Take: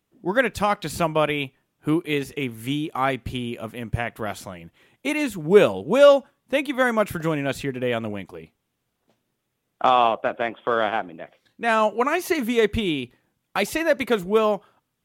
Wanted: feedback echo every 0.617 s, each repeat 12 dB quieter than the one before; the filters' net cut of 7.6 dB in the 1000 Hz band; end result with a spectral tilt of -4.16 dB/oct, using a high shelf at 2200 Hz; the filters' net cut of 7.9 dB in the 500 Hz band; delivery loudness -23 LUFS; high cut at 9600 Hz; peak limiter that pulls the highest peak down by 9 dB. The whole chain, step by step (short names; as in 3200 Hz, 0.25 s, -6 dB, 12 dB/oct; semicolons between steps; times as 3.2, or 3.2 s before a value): LPF 9600 Hz; bell 500 Hz -7.5 dB; bell 1000 Hz -9 dB; high shelf 2200 Hz +5.5 dB; limiter -16.5 dBFS; feedback echo 0.617 s, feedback 25%, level -12 dB; gain +6 dB